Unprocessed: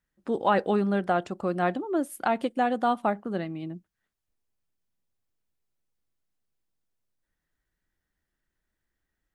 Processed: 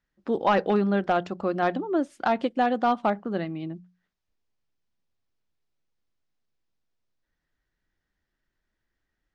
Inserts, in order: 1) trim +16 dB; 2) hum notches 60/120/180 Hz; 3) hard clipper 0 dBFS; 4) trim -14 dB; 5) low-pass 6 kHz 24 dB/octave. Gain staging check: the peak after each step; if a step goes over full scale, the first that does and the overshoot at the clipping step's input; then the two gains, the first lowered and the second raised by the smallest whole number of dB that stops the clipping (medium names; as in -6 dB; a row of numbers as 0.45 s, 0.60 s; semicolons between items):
+5.5 dBFS, +5.5 dBFS, 0.0 dBFS, -14.0 dBFS, -13.5 dBFS; step 1, 5.5 dB; step 1 +10 dB, step 4 -8 dB